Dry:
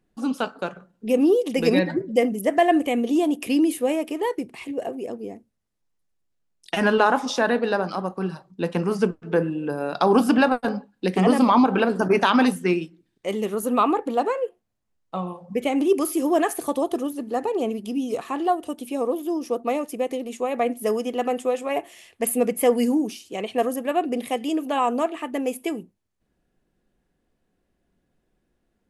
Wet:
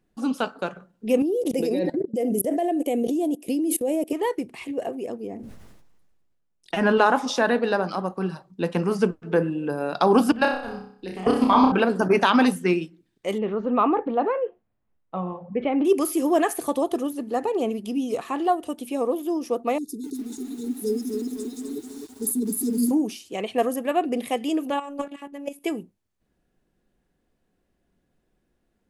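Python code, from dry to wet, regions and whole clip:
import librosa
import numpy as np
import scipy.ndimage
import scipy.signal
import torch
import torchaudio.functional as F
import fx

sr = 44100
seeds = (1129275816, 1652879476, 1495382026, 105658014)

y = fx.chain(x, sr, fx.curve_eq(hz=(150.0, 340.0, 650.0, 1200.0, 11000.0), db=(0, 12, 10, -6, 12)),
    fx.level_steps(step_db=23), at=(1.22, 4.13))
y = fx.chain(y, sr, fx.high_shelf(hz=2800.0, db=-9.0),
    fx.sustainer(db_per_s=33.0), at=(5.27, 6.97))
y = fx.chain(y, sr, fx.low_shelf_res(hz=110.0, db=12.0, q=1.5),
    fx.level_steps(step_db=17),
    fx.room_flutter(wall_m=5.3, rt60_s=0.54), at=(10.32, 11.72))
y = fx.chain(y, sr, fx.gaussian_blur(sigma=3.0),
    fx.transient(attack_db=-1, sustain_db=4), at=(13.38, 15.85))
y = fx.chain(y, sr, fx.brickwall_bandstop(low_hz=450.0, high_hz=3500.0),
    fx.echo_crushed(ms=257, feedback_pct=55, bits=8, wet_db=-5.0), at=(19.78, 22.91))
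y = fx.chain(y, sr, fx.robotise(hz=283.0),
    fx.level_steps(step_db=12), at=(24.7, 25.64))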